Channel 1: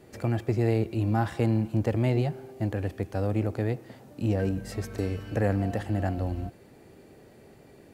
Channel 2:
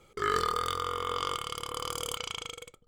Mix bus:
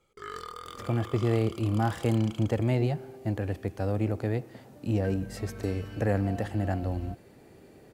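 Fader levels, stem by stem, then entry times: -1.0, -11.5 dB; 0.65, 0.00 s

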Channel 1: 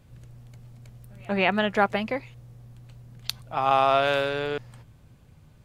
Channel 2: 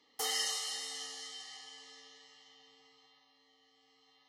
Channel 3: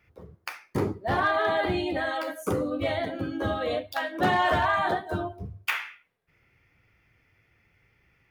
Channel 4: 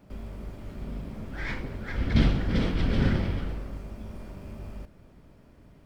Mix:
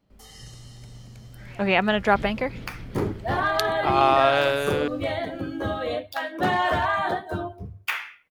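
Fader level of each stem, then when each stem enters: +2.0, -14.0, +0.5, -14.5 dB; 0.30, 0.00, 2.20, 0.00 s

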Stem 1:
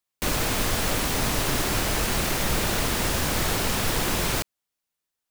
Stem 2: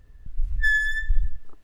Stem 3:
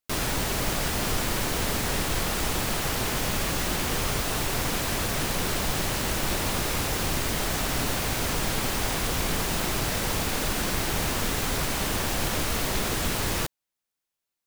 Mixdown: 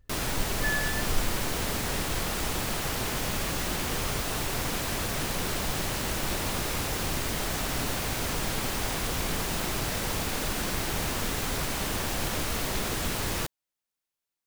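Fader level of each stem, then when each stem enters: off, -9.0 dB, -3.0 dB; off, 0.00 s, 0.00 s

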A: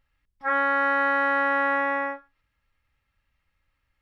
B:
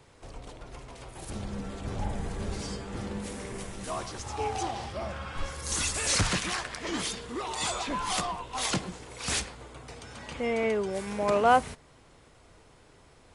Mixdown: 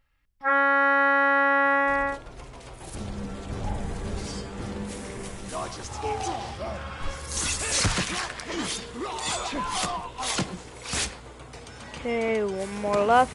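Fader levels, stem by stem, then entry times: +2.0, +2.0 dB; 0.00, 1.65 s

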